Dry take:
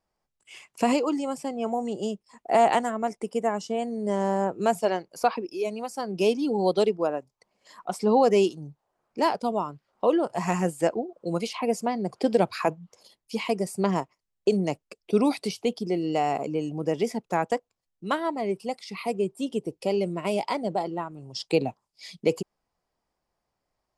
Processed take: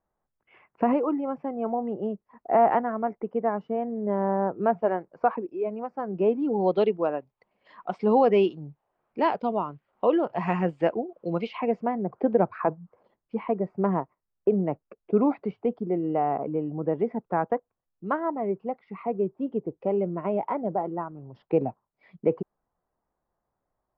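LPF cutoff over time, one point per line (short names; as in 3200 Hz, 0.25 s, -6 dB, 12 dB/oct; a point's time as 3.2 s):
LPF 24 dB/oct
6.35 s 1700 Hz
6.84 s 3000 Hz
11.43 s 3000 Hz
12.06 s 1600 Hz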